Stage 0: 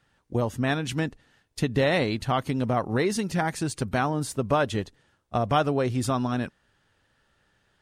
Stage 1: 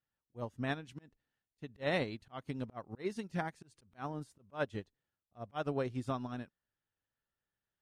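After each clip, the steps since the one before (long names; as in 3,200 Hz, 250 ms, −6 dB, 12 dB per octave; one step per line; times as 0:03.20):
high-shelf EQ 8,300 Hz −6 dB
volume swells 123 ms
expander for the loud parts 2.5 to 1, over −34 dBFS
level −7.5 dB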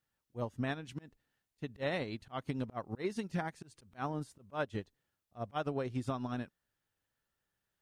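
downward compressor 6 to 1, threshold −37 dBFS, peak gain reduction 9.5 dB
level +5.5 dB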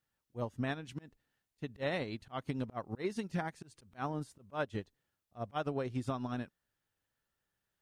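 no processing that can be heard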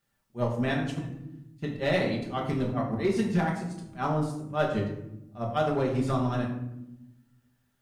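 gain into a clipping stage and back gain 27 dB
convolution reverb RT60 0.90 s, pre-delay 5 ms, DRR −1.5 dB
level +5.5 dB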